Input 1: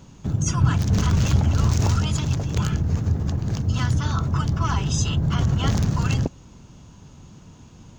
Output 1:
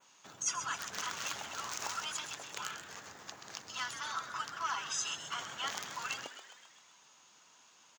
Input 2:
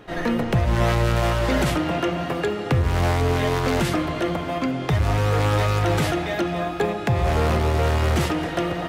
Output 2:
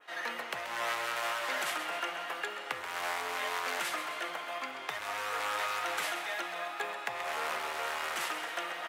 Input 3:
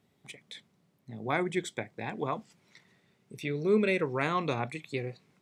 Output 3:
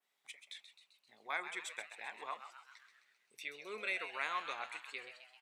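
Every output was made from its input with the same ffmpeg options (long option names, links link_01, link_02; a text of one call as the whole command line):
ffmpeg -i in.wav -filter_complex "[0:a]highpass=1100,adynamicequalizer=threshold=0.00447:dfrequency=4600:dqfactor=0.92:tfrequency=4600:tqfactor=0.92:attack=5:release=100:ratio=0.375:range=2:mode=cutabove:tftype=bell,asplit=2[link_01][link_02];[link_02]asplit=7[link_03][link_04][link_05][link_06][link_07][link_08][link_09];[link_03]adelay=131,afreqshift=130,volume=-10dB[link_10];[link_04]adelay=262,afreqshift=260,volume=-14.6dB[link_11];[link_05]adelay=393,afreqshift=390,volume=-19.2dB[link_12];[link_06]adelay=524,afreqshift=520,volume=-23.7dB[link_13];[link_07]adelay=655,afreqshift=650,volume=-28.3dB[link_14];[link_08]adelay=786,afreqshift=780,volume=-32.9dB[link_15];[link_09]adelay=917,afreqshift=910,volume=-37.5dB[link_16];[link_10][link_11][link_12][link_13][link_14][link_15][link_16]amix=inputs=7:normalize=0[link_17];[link_01][link_17]amix=inputs=2:normalize=0,volume=-4.5dB" out.wav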